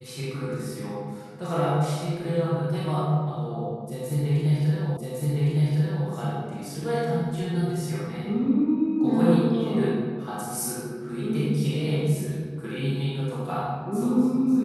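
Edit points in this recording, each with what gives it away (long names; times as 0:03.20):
0:04.97: the same again, the last 1.11 s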